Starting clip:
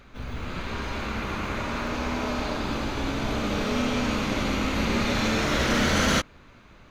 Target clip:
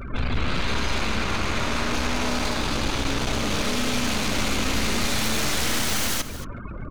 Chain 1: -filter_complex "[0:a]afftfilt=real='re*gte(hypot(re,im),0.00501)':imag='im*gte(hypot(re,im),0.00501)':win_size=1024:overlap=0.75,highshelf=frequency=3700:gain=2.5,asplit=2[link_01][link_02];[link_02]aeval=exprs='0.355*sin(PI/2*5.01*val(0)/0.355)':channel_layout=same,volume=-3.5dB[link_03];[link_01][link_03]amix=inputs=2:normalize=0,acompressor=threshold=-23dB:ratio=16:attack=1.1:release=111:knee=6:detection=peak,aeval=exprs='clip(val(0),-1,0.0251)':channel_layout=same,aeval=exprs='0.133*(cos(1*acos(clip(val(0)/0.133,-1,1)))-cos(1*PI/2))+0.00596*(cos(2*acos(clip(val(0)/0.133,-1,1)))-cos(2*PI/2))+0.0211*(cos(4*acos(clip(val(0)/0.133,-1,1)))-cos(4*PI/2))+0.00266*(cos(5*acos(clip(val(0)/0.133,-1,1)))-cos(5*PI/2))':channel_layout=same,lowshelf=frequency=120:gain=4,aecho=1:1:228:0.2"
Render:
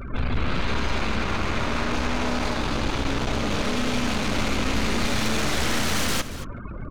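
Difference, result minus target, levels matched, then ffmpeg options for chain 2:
8,000 Hz band −3.5 dB
-filter_complex "[0:a]afftfilt=real='re*gte(hypot(re,im),0.00501)':imag='im*gte(hypot(re,im),0.00501)':win_size=1024:overlap=0.75,highshelf=frequency=3700:gain=12,asplit=2[link_01][link_02];[link_02]aeval=exprs='0.355*sin(PI/2*5.01*val(0)/0.355)':channel_layout=same,volume=-3.5dB[link_03];[link_01][link_03]amix=inputs=2:normalize=0,acompressor=threshold=-23dB:ratio=16:attack=1.1:release=111:knee=6:detection=peak,aeval=exprs='clip(val(0),-1,0.0251)':channel_layout=same,aeval=exprs='0.133*(cos(1*acos(clip(val(0)/0.133,-1,1)))-cos(1*PI/2))+0.00596*(cos(2*acos(clip(val(0)/0.133,-1,1)))-cos(2*PI/2))+0.0211*(cos(4*acos(clip(val(0)/0.133,-1,1)))-cos(4*PI/2))+0.00266*(cos(5*acos(clip(val(0)/0.133,-1,1)))-cos(5*PI/2))':channel_layout=same,lowshelf=frequency=120:gain=4,aecho=1:1:228:0.2"

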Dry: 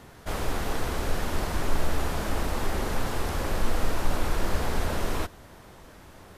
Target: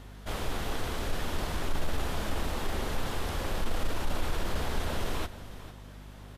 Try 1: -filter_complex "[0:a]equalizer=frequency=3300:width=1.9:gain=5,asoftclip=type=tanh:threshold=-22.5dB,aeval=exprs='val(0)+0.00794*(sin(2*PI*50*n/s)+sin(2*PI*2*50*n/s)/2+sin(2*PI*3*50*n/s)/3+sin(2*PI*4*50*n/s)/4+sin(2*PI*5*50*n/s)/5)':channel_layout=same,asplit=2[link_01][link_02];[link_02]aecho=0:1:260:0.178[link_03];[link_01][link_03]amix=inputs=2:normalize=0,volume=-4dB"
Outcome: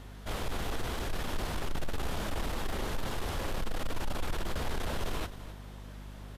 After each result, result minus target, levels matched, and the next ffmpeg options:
echo 192 ms early; soft clipping: distortion +10 dB
-filter_complex "[0:a]equalizer=frequency=3300:width=1.9:gain=5,asoftclip=type=tanh:threshold=-22.5dB,aeval=exprs='val(0)+0.00794*(sin(2*PI*50*n/s)+sin(2*PI*2*50*n/s)/2+sin(2*PI*3*50*n/s)/3+sin(2*PI*4*50*n/s)/4+sin(2*PI*5*50*n/s)/5)':channel_layout=same,asplit=2[link_01][link_02];[link_02]aecho=0:1:452:0.178[link_03];[link_01][link_03]amix=inputs=2:normalize=0,volume=-4dB"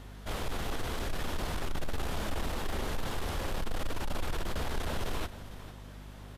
soft clipping: distortion +10 dB
-filter_complex "[0:a]equalizer=frequency=3300:width=1.9:gain=5,asoftclip=type=tanh:threshold=-14dB,aeval=exprs='val(0)+0.00794*(sin(2*PI*50*n/s)+sin(2*PI*2*50*n/s)/2+sin(2*PI*3*50*n/s)/3+sin(2*PI*4*50*n/s)/4+sin(2*PI*5*50*n/s)/5)':channel_layout=same,asplit=2[link_01][link_02];[link_02]aecho=0:1:452:0.178[link_03];[link_01][link_03]amix=inputs=2:normalize=0,volume=-4dB"

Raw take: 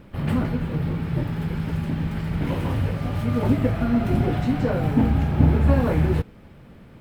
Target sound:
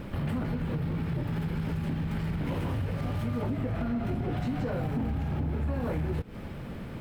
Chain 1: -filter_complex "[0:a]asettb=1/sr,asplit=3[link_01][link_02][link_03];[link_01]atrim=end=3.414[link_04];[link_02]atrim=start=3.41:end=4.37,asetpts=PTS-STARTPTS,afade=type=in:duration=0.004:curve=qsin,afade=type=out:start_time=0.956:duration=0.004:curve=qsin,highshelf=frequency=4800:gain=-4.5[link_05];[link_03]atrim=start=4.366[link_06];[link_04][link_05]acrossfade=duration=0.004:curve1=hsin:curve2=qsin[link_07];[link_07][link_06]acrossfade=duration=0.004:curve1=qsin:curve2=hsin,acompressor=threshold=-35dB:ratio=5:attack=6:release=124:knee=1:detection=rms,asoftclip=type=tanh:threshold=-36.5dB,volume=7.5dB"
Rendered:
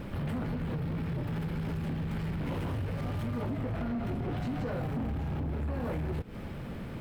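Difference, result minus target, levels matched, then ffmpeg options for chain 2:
soft clipping: distortion +9 dB
-filter_complex "[0:a]asettb=1/sr,asplit=3[link_01][link_02][link_03];[link_01]atrim=end=3.414[link_04];[link_02]atrim=start=3.41:end=4.37,asetpts=PTS-STARTPTS,afade=type=in:duration=0.004:curve=qsin,afade=type=out:start_time=0.956:duration=0.004:curve=qsin,highshelf=frequency=4800:gain=-4.5[link_05];[link_03]atrim=start=4.366[link_06];[link_04][link_05]acrossfade=duration=0.004:curve1=hsin:curve2=qsin[link_07];[link_07][link_06]acrossfade=duration=0.004:curve1=qsin:curve2=hsin,acompressor=threshold=-35dB:ratio=5:attack=6:release=124:knee=1:detection=rms,asoftclip=type=tanh:threshold=-29.5dB,volume=7.5dB"

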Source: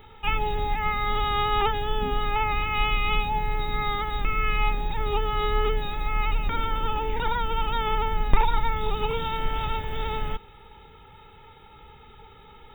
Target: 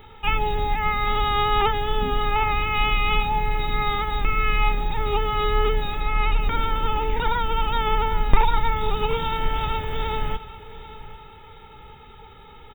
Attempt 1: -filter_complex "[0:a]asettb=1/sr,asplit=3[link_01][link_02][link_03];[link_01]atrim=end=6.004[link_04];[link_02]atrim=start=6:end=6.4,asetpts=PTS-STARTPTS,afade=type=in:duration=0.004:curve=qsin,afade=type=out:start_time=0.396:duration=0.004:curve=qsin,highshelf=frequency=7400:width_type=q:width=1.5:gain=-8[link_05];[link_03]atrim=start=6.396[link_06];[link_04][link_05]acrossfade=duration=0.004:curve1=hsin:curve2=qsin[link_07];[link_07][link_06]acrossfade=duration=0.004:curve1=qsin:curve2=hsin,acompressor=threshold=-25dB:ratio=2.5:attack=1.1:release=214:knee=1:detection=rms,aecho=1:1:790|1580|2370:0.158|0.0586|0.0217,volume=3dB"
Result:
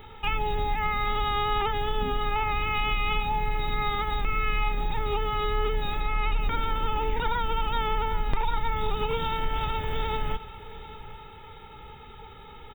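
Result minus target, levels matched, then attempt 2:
downward compressor: peak gain reduction +12 dB
-filter_complex "[0:a]asettb=1/sr,asplit=3[link_01][link_02][link_03];[link_01]atrim=end=6.004[link_04];[link_02]atrim=start=6:end=6.4,asetpts=PTS-STARTPTS,afade=type=in:duration=0.004:curve=qsin,afade=type=out:start_time=0.396:duration=0.004:curve=qsin,highshelf=frequency=7400:width_type=q:width=1.5:gain=-8[link_05];[link_03]atrim=start=6.396[link_06];[link_04][link_05]acrossfade=duration=0.004:curve1=hsin:curve2=qsin[link_07];[link_07][link_06]acrossfade=duration=0.004:curve1=qsin:curve2=hsin,aecho=1:1:790|1580|2370:0.158|0.0586|0.0217,volume=3dB"

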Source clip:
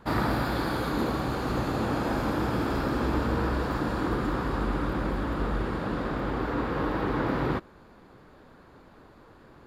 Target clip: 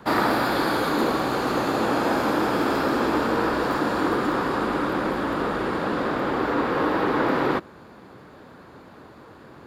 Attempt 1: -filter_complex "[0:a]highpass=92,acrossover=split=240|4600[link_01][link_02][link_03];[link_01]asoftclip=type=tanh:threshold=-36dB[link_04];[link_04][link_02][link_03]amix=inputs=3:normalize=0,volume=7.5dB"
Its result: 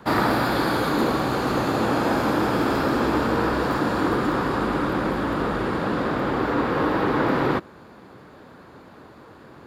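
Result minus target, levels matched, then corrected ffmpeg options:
soft clipping: distortion −5 dB
-filter_complex "[0:a]highpass=92,acrossover=split=240|4600[link_01][link_02][link_03];[link_01]asoftclip=type=tanh:threshold=-45.5dB[link_04];[link_04][link_02][link_03]amix=inputs=3:normalize=0,volume=7.5dB"

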